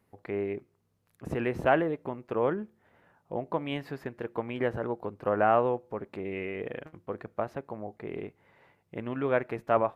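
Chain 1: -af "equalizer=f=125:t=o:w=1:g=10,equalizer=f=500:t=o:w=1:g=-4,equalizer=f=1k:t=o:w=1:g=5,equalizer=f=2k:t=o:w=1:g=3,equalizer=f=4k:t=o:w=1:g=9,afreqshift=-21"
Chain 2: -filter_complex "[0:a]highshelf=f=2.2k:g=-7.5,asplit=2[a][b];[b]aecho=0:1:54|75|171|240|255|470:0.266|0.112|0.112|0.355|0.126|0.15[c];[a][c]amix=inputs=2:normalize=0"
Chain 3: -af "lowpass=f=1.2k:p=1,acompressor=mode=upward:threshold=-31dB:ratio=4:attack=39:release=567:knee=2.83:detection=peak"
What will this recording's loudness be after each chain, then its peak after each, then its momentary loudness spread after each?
-30.0, -31.5, -32.5 LUFS; -7.5, -9.5, -5.0 dBFS; 15, 15, 12 LU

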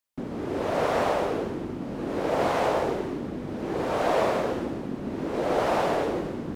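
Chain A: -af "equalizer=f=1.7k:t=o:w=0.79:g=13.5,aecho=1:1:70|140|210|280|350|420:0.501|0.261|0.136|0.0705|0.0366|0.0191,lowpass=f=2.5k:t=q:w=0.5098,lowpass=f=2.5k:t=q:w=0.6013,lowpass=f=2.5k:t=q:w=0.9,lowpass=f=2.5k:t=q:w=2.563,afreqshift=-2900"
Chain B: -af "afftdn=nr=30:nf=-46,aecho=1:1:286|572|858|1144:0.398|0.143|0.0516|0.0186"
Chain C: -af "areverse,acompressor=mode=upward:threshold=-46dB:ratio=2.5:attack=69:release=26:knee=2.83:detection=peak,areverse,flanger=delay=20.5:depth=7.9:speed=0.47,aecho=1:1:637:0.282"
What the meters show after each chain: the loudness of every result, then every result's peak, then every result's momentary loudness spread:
-21.5, -27.0, -30.0 LUFS; -7.5, -11.5, -14.5 dBFS; 10, 8, 7 LU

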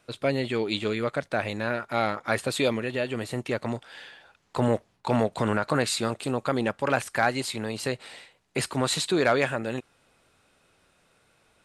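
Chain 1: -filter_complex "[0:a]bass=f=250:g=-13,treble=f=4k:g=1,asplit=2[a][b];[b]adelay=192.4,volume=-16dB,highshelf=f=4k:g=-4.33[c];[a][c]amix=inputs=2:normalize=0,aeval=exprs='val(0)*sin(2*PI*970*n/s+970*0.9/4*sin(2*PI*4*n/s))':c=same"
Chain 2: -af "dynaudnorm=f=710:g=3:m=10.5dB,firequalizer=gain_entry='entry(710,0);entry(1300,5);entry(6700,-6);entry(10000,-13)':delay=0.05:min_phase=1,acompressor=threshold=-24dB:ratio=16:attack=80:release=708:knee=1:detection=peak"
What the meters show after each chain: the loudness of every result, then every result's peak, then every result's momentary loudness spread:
-31.0, -27.0 LUFS; -10.5, -5.0 dBFS; 12, 6 LU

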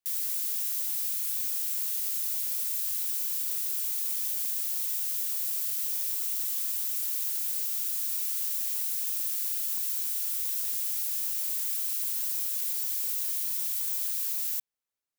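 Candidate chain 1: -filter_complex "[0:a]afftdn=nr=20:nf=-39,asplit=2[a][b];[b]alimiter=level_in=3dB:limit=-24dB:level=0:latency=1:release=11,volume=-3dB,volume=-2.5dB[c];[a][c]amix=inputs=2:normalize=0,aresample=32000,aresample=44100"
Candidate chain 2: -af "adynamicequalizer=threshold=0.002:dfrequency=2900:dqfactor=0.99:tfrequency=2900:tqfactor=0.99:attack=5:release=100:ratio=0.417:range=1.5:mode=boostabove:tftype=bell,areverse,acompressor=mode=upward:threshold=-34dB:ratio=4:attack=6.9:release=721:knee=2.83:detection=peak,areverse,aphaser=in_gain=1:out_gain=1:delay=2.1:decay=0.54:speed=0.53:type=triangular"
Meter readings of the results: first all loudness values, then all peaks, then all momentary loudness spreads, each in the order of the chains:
-32.5, -25.5 LUFS; -21.5, -7.0 dBFS; 0, 0 LU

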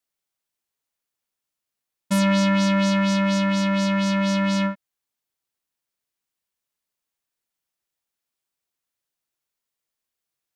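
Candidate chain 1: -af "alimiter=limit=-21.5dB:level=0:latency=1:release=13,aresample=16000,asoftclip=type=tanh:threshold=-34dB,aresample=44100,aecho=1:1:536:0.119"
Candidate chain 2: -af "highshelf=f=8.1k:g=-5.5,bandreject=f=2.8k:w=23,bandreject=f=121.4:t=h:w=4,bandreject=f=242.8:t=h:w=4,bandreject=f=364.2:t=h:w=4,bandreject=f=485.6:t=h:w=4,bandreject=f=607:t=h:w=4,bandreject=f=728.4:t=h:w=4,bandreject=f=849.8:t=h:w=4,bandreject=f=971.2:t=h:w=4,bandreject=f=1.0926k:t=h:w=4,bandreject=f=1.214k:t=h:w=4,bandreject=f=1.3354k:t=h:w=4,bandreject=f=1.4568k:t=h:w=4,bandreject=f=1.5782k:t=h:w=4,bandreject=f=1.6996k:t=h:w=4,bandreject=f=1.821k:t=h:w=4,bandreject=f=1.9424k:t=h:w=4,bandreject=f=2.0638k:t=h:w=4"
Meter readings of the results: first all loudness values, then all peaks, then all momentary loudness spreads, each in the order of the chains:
-35.0, -21.0 LUFS; -31.5, -12.0 dBFS; 7, 6 LU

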